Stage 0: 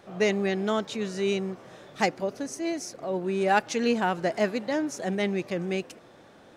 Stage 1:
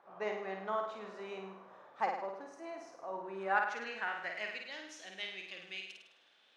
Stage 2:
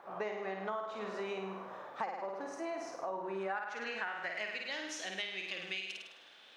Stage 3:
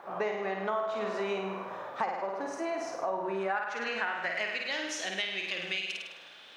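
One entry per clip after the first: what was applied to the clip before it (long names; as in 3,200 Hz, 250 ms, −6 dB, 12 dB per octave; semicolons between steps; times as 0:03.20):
band-pass filter sweep 1,000 Hz → 3,100 Hz, 0:03.25–0:04.76; on a send: flutter between parallel walls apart 8.9 metres, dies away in 0.71 s; on the sum: level −3 dB
downward compressor 8 to 1, threshold −45 dBFS, peak gain reduction 19.5 dB; level +9.5 dB
spring reverb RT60 1.6 s, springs 35 ms, chirp 75 ms, DRR 10 dB; level +6 dB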